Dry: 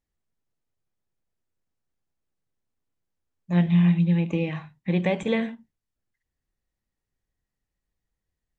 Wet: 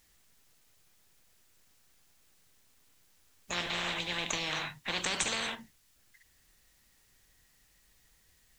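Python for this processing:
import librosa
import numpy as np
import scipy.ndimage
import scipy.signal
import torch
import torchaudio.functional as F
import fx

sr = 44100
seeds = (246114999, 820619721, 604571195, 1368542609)

y = fx.tilt_shelf(x, sr, db=-7.0, hz=1200.0)
y = fx.spectral_comp(y, sr, ratio=10.0)
y = F.gain(torch.from_numpy(y), -2.5).numpy()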